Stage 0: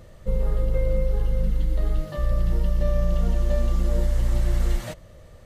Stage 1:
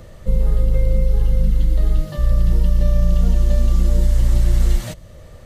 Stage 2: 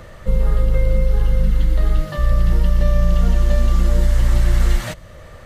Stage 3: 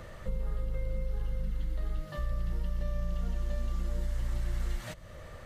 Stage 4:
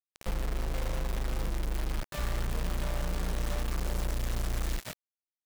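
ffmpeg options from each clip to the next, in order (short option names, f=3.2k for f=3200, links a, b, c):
-filter_complex "[0:a]acrossover=split=260|3000[a][b][c];[b]acompressor=threshold=-53dB:ratio=1.5[d];[a][d][c]amix=inputs=3:normalize=0,volume=7dB"
-af "equalizer=f=1.5k:w=0.65:g=9.5"
-af "acompressor=threshold=-30dB:ratio=2,volume=-7dB"
-af "acrusher=bits=5:mix=0:aa=0.000001"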